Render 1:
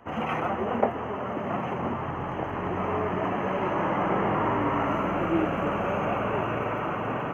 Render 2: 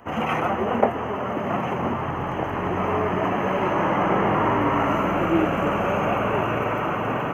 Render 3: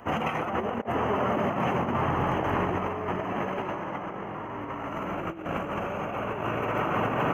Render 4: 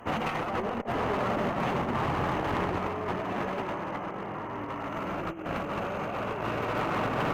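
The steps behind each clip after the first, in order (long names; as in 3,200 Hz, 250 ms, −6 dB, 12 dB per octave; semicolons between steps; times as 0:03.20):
high-shelf EQ 5,200 Hz +8 dB; level +4.5 dB
compressor whose output falls as the input rises −26 dBFS, ratio −0.5; level −2.5 dB
asymmetric clip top −31 dBFS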